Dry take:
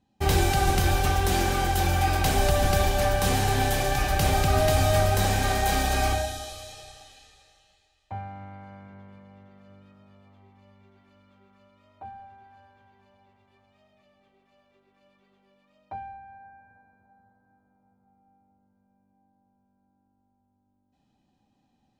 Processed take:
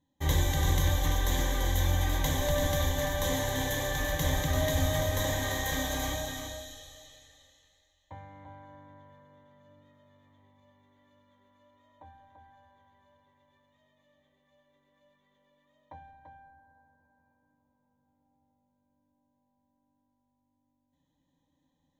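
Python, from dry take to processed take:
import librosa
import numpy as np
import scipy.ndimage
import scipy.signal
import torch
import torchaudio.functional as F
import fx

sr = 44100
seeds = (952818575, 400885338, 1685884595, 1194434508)

y = fx.ripple_eq(x, sr, per_octave=1.1, db=15)
y = y + 10.0 ** (-7.0 / 20.0) * np.pad(y, (int(339 * sr / 1000.0), 0))[:len(y)]
y = y * librosa.db_to_amplitude(-8.0)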